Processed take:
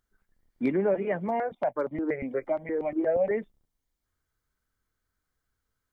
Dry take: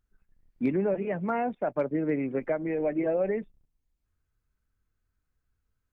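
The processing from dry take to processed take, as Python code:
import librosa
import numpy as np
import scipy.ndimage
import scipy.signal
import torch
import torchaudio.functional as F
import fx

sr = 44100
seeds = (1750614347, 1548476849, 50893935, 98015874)

y = fx.low_shelf(x, sr, hz=220.0, db=-11.0)
y = fx.notch(y, sr, hz=2600.0, q=6.8)
y = fx.phaser_held(y, sr, hz=8.5, low_hz=370.0, high_hz=1600.0, at=(1.28, 3.31))
y = F.gain(torch.from_numpy(y), 4.5).numpy()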